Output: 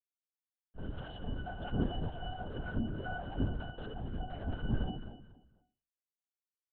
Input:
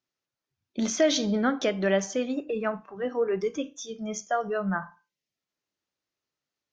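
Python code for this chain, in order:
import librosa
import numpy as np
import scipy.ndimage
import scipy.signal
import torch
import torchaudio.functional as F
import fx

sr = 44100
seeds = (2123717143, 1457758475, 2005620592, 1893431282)

p1 = fx.lower_of_two(x, sr, delay_ms=3.8)
p2 = fx.cheby_harmonics(p1, sr, harmonics=(3, 5), levels_db=(-43, -35), full_scale_db=-13.5)
p3 = fx.schmitt(p2, sr, flips_db=-43.0)
p4 = fx.quant_companded(p3, sr, bits=4)
p5 = fx.octave_resonator(p4, sr, note='F#', decay_s=0.44)
p6 = p5 + fx.echo_feedback(p5, sr, ms=240, feedback_pct=26, wet_db=-12.0, dry=0)
p7 = fx.lpc_vocoder(p6, sr, seeds[0], excitation='whisper', order=10)
y = p7 * 10.0 ** (12.5 / 20.0)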